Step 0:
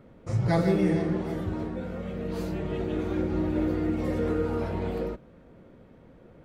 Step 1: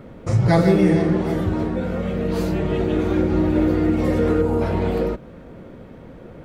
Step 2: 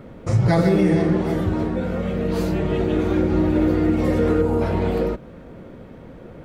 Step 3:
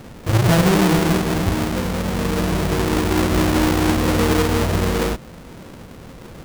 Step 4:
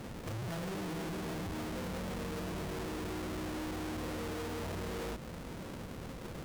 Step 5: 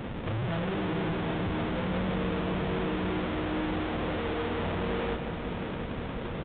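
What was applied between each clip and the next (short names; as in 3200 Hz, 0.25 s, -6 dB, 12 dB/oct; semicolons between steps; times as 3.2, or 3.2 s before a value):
spectral gain 4.42–4.62, 1100–6300 Hz -7 dB; in parallel at -0.5 dB: compressor, threshold -35 dBFS, peak gain reduction 15 dB; on the sum: gain +6.5 dB
maximiser +7 dB; gain -7 dB
half-waves squared off; gain -2.5 dB
compressor, threshold -24 dBFS, peak gain reduction 11 dB; tube stage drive 35 dB, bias 0.45; gain -3 dB
downsampling 8000 Hz; multi-head echo 0.178 s, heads first and third, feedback 74%, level -12 dB; gain +8 dB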